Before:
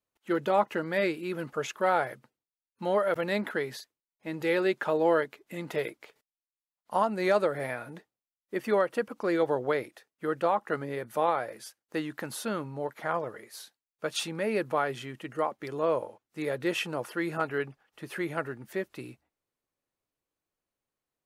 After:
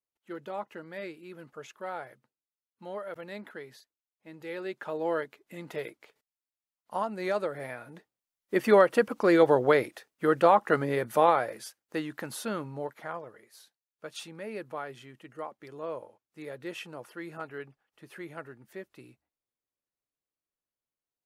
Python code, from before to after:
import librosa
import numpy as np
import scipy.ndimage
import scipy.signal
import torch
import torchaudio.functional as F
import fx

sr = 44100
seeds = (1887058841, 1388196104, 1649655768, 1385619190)

y = fx.gain(x, sr, db=fx.line((4.46, -12.0), (5.17, -5.0), (7.88, -5.0), (8.57, 6.0), (11.07, 6.0), (12.04, -1.0), (12.79, -1.0), (13.23, -9.5)))